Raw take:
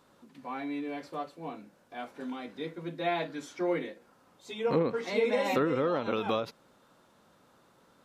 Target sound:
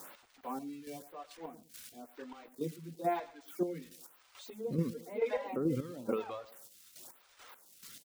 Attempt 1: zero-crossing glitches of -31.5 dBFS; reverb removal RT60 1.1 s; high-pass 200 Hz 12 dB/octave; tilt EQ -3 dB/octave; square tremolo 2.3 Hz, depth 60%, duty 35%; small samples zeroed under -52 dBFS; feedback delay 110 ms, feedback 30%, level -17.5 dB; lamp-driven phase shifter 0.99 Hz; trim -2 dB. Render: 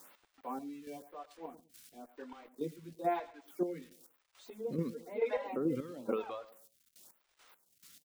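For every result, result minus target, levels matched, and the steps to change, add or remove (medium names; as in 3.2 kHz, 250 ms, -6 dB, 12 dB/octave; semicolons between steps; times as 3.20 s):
125 Hz band -4.5 dB; zero-crossing glitches: distortion -6 dB
change: high-pass 93 Hz 12 dB/octave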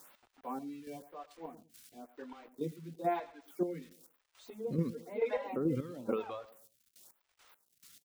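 zero-crossing glitches: distortion -6 dB
change: zero-crossing glitches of -25 dBFS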